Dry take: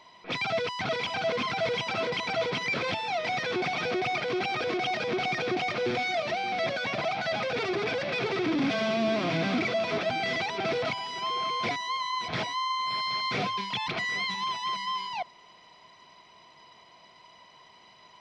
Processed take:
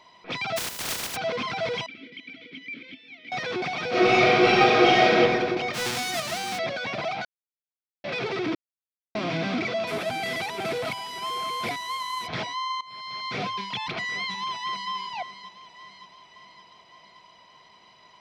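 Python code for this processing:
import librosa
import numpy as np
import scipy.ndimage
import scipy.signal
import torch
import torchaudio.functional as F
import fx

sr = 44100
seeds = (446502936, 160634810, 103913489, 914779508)

y = fx.spec_flatten(x, sr, power=0.13, at=(0.56, 1.15), fade=0.02)
y = fx.vowel_filter(y, sr, vowel='i', at=(1.86, 3.32))
y = fx.reverb_throw(y, sr, start_s=3.89, length_s=1.26, rt60_s=1.7, drr_db=-11.5)
y = fx.envelope_flatten(y, sr, power=0.3, at=(5.73, 6.57), fade=0.02)
y = fx.cvsd(y, sr, bps=64000, at=(9.87, 12.27))
y = fx.echo_throw(y, sr, start_s=14.03, length_s=0.88, ms=570, feedback_pct=60, wet_db=-13.0)
y = fx.edit(y, sr, fx.silence(start_s=7.25, length_s=0.79),
    fx.silence(start_s=8.55, length_s=0.6),
    fx.fade_in_from(start_s=12.81, length_s=0.65, floor_db=-18.5), tone=tone)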